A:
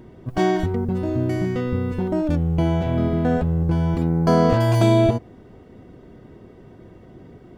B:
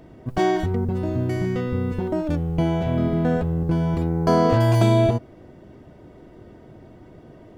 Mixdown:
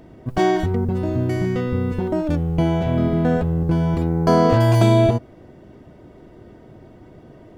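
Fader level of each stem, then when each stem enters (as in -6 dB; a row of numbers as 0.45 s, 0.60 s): -14.0 dB, +1.0 dB; 0.00 s, 0.00 s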